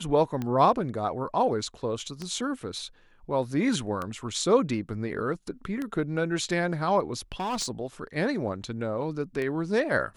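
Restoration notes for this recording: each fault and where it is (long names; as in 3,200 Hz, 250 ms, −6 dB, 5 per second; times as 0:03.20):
scratch tick 33 1/3 rpm −19 dBFS
0:07.32–0:07.68: clipping −26 dBFS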